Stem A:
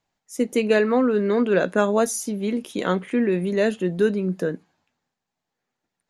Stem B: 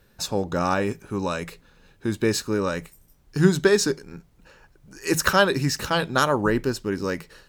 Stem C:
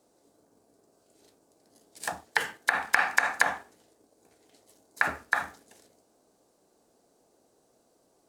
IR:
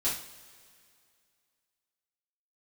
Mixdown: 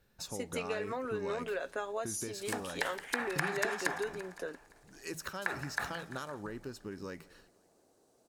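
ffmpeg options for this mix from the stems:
-filter_complex "[0:a]highpass=560,aecho=1:1:7.3:0.41,acompressor=threshold=-26dB:ratio=6,volume=-7.5dB[link_01];[1:a]acompressor=threshold=-27dB:ratio=6,volume=-11.5dB,asplit=2[link_02][link_03];[link_03]volume=-23.5dB[link_04];[2:a]acompressor=threshold=-33dB:ratio=2,adelay=450,volume=-3dB,asplit=2[link_05][link_06];[link_06]volume=-11.5dB[link_07];[link_04][link_07]amix=inputs=2:normalize=0,aecho=0:1:171|342|513|684|855|1026|1197|1368|1539:1|0.57|0.325|0.185|0.106|0.0602|0.0343|0.0195|0.0111[link_08];[link_01][link_02][link_05][link_08]amix=inputs=4:normalize=0"

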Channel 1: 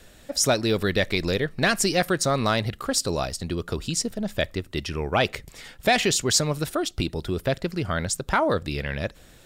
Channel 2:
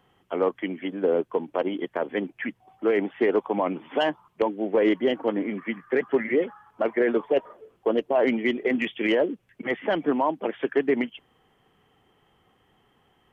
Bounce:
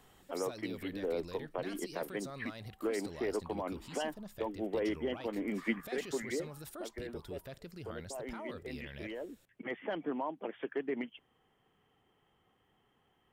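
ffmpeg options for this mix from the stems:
ffmpeg -i stem1.wav -i stem2.wav -filter_complex "[0:a]highshelf=frequency=9700:gain=10.5,alimiter=limit=-20.5dB:level=0:latency=1:release=17,volume=-17.5dB,asplit=2[link_01][link_02];[1:a]alimiter=limit=-17.5dB:level=0:latency=1:release=249,volume=-0.5dB,afade=type=out:start_time=6.22:duration=0.68:silence=0.375837[link_03];[link_02]apad=whole_len=587437[link_04];[link_03][link_04]sidechaincompress=threshold=-52dB:ratio=4:attack=10:release=803[link_05];[link_01][link_05]amix=inputs=2:normalize=0" out.wav

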